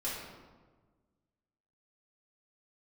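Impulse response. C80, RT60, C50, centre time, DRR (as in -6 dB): 3.0 dB, 1.4 s, 0.5 dB, 76 ms, -9.0 dB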